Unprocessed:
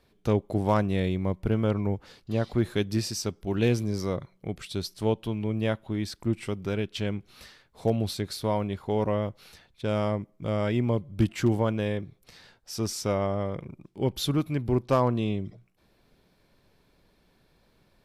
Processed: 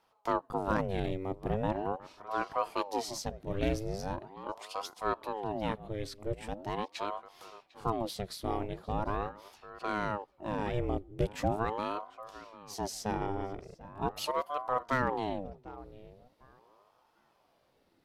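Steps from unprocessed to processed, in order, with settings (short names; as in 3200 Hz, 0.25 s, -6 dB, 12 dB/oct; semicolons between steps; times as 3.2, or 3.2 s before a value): tape echo 0.748 s, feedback 23%, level -14.5 dB, low-pass 1700 Hz; ring modulator with a swept carrier 540 Hz, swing 65%, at 0.41 Hz; gain -4 dB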